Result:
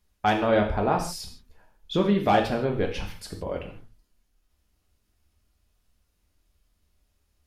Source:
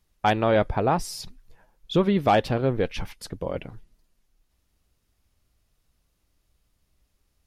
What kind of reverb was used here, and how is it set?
gated-style reverb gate 190 ms falling, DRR 1.5 dB; trim -3 dB

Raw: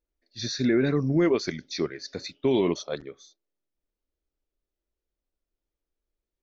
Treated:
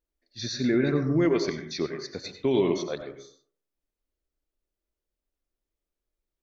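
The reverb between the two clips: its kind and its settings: plate-style reverb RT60 0.5 s, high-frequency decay 0.35×, pre-delay 80 ms, DRR 6.5 dB; trim -1.5 dB

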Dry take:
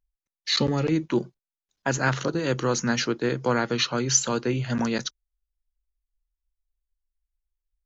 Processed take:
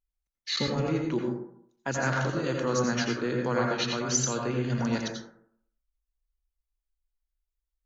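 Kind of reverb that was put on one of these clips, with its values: plate-style reverb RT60 0.65 s, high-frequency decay 0.35×, pre-delay 75 ms, DRR 0 dB; trim -6.5 dB

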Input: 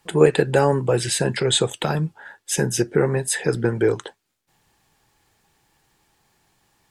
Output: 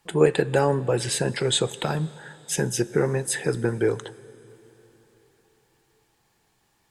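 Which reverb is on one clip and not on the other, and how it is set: plate-style reverb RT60 3.9 s, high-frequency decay 0.95×, DRR 18 dB; trim -3.5 dB

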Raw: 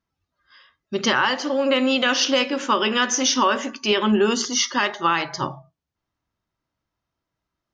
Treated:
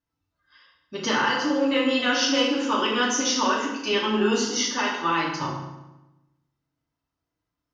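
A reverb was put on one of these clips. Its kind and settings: FDN reverb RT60 0.98 s, low-frequency decay 1.3×, high-frequency decay 0.8×, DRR -4.5 dB; trim -8.5 dB

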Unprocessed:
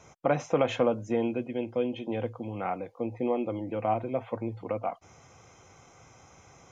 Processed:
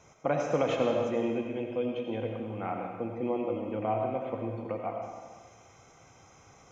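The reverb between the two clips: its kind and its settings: algorithmic reverb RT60 1.5 s, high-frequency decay 0.95×, pre-delay 45 ms, DRR 1.5 dB; trim -3.5 dB

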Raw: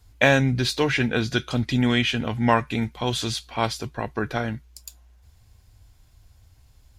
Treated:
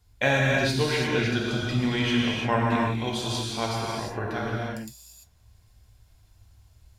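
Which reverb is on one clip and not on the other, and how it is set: gated-style reverb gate 370 ms flat, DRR -4 dB; trim -7.5 dB

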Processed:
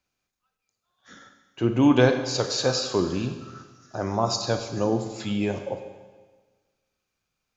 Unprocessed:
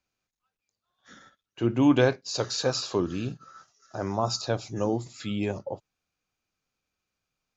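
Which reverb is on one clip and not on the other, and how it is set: Schroeder reverb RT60 1.4 s, combs from 32 ms, DRR 7 dB; trim +2.5 dB

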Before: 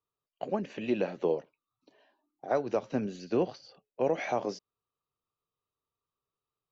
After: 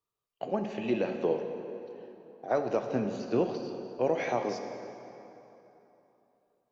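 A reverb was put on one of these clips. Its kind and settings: plate-style reverb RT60 3.2 s, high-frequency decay 0.7×, DRR 5 dB

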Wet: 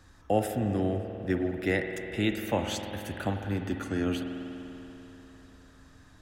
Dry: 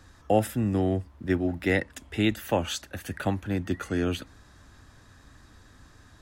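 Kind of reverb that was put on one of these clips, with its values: spring tank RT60 3.5 s, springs 49 ms, chirp 80 ms, DRR 5 dB; trim -3.5 dB

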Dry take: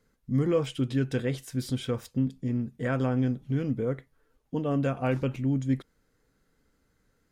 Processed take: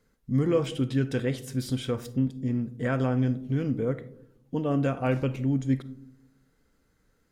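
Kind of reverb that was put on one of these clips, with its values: algorithmic reverb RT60 0.68 s, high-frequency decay 0.25×, pre-delay 10 ms, DRR 14 dB; trim +1 dB

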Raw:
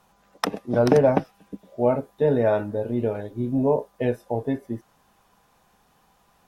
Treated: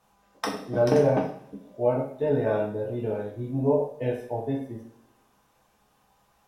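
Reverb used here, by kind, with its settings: two-slope reverb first 0.52 s, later 1.8 s, from -26 dB, DRR -3 dB; trim -8 dB

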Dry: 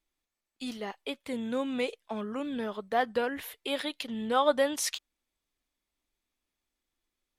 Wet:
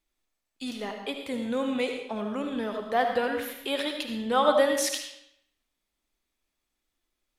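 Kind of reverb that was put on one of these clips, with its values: algorithmic reverb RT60 0.74 s, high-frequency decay 0.9×, pre-delay 35 ms, DRR 4 dB; trim +2 dB

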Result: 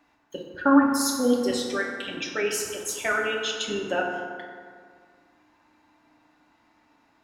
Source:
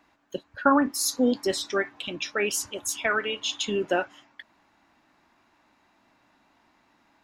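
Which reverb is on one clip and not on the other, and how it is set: FDN reverb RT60 2 s, low-frequency decay 1×, high-frequency decay 0.45×, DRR -1 dB; trim -3 dB

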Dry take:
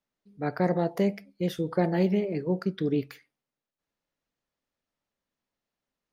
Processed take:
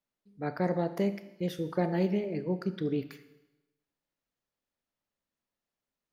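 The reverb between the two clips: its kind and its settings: Schroeder reverb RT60 1 s, combs from 26 ms, DRR 12 dB; trim -4 dB

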